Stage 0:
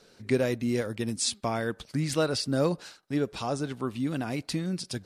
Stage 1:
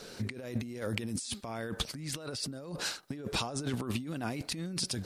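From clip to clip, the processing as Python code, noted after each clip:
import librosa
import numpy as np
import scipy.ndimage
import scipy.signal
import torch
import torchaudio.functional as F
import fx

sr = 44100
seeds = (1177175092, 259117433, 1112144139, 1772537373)

y = fx.high_shelf(x, sr, hz=9400.0, db=5.5)
y = fx.over_compress(y, sr, threshold_db=-39.0, ratio=-1.0)
y = y * 10.0 ** (1.5 / 20.0)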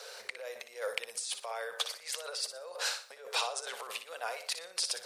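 y = scipy.signal.sosfilt(scipy.signal.ellip(4, 1.0, 40, 480.0, 'highpass', fs=sr, output='sos'), x)
y = fx.room_flutter(y, sr, wall_m=10.2, rt60_s=0.36)
y = y * 10.0 ** (2.5 / 20.0)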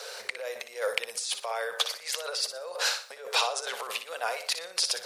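y = fx.dynamic_eq(x, sr, hz=8500.0, q=4.1, threshold_db=-54.0, ratio=4.0, max_db=-6)
y = y * 10.0 ** (6.5 / 20.0)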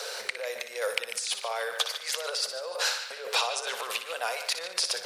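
y = fx.echo_banded(x, sr, ms=146, feedback_pct=48, hz=2300.0, wet_db=-10)
y = fx.band_squash(y, sr, depth_pct=40)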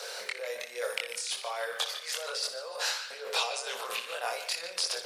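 y = scipy.signal.sosfilt(scipy.signal.butter(2, 65.0, 'highpass', fs=sr, output='sos'), x)
y = fx.chorus_voices(y, sr, voices=2, hz=0.61, base_ms=24, depth_ms=1.2, mix_pct=45)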